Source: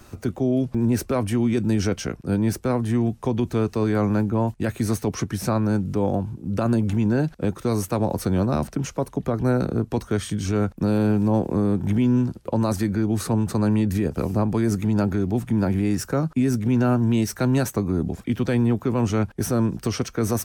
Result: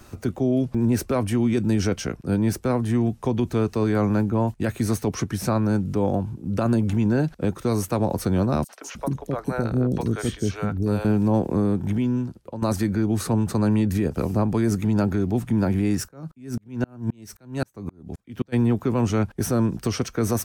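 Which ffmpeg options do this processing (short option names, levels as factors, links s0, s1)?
-filter_complex "[0:a]asettb=1/sr,asplit=3[s0][s1][s2];[s0]atrim=end=8.644[s3];[s1]atrim=start=8.64:end=11.05,asetpts=PTS-STARTPTS,afade=t=in:d=0.004:c=qsin,afade=t=out:st=2.406:d=0.004:c=qsin,acrossover=split=500|4800[s4][s5][s6];[s5]adelay=50[s7];[s4]adelay=310[s8];[s8][s7][s6]amix=inputs=3:normalize=0,atrim=end_sample=106281[s9];[s2]atrim=start=11.046[s10];[s3][s9]acrossfade=d=0.004:c1=hsin:c2=qsin[s11];[s11][s10]acrossfade=d=0.004:c1=qsin:c2=hsin,asplit=3[s12][s13][s14];[s12]afade=t=out:st=16.07:d=0.02[s15];[s13]aeval=exprs='val(0)*pow(10,-39*if(lt(mod(-3.8*n/s,1),2*abs(-3.8)/1000),1-mod(-3.8*n/s,1)/(2*abs(-3.8)/1000),(mod(-3.8*n/s,1)-2*abs(-3.8)/1000)/(1-2*abs(-3.8)/1000))/20)':c=same,afade=t=in:st=16.07:d=0.02,afade=t=out:st=18.52:d=0.02[s16];[s14]afade=t=in:st=18.52:d=0.02[s17];[s15][s16][s17]amix=inputs=3:normalize=0,asplit=2[s18][s19];[s18]atrim=end=12.62,asetpts=PTS-STARTPTS,afade=t=out:st=11.6:d=1.02:silence=0.237137[s20];[s19]atrim=start=12.62,asetpts=PTS-STARTPTS,afade=t=in:d=0.004:c=hsin:silence=0.237137[s21];[s20][s21]concat=n=2:v=0:a=1"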